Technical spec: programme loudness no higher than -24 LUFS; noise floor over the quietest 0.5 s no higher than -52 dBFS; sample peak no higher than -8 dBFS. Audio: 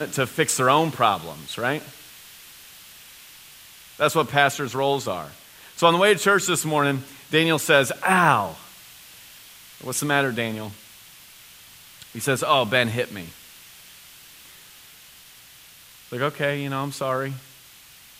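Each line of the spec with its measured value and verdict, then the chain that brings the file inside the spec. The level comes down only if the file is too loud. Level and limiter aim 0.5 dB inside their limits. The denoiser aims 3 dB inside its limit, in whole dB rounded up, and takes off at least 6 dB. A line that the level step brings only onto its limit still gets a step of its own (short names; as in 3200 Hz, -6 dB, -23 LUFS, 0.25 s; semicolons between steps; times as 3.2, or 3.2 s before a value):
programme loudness -22.0 LUFS: fail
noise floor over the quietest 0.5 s -49 dBFS: fail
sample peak -2.0 dBFS: fail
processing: denoiser 6 dB, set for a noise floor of -49 dBFS; gain -2.5 dB; limiter -8.5 dBFS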